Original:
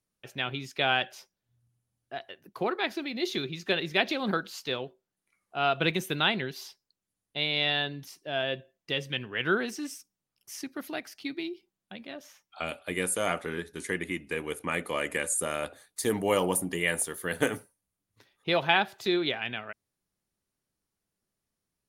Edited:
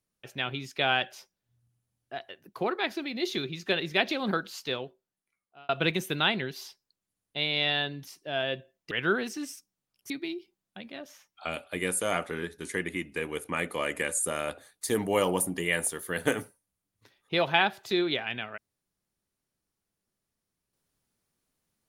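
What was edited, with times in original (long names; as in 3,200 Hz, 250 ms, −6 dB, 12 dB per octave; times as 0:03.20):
0:04.71–0:05.69: fade out
0:08.91–0:09.33: remove
0:10.52–0:11.25: remove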